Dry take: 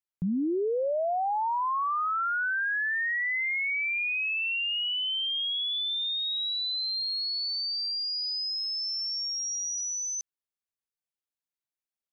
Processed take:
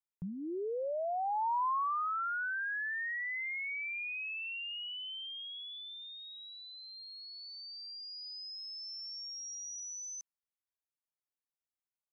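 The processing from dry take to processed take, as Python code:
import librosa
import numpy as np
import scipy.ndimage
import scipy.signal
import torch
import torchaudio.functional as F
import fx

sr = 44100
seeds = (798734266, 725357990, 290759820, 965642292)

y = fx.graphic_eq_15(x, sr, hz=(250, 1000, 4000), db=(-7, 5, -11))
y = F.gain(torch.from_numpy(y), -8.0).numpy()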